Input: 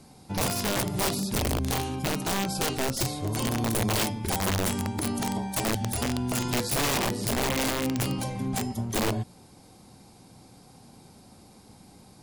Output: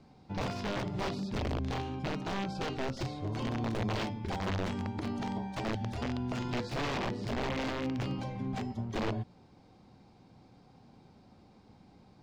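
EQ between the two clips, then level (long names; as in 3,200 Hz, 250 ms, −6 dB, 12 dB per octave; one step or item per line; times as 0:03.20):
high-frequency loss of the air 190 metres
−5.5 dB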